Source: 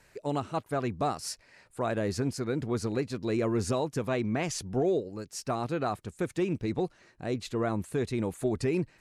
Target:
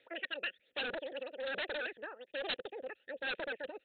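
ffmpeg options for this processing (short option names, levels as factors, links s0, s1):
-filter_complex "[0:a]aphaser=in_gain=1:out_gain=1:delay=1.8:decay=0.58:speed=0.51:type=sinusoidal,asetrate=103194,aresample=44100,asplit=3[s0][s1][s2];[s0]bandpass=f=530:t=q:w=8,volume=1[s3];[s1]bandpass=f=1840:t=q:w=8,volume=0.501[s4];[s2]bandpass=f=2480:t=q:w=8,volume=0.355[s5];[s3][s4][s5]amix=inputs=3:normalize=0,aresample=8000,aeval=exprs='0.0188*(abs(mod(val(0)/0.0188+3,4)-2)-1)':c=same,aresample=44100,crystalizer=i=5:c=0,volume=0.891"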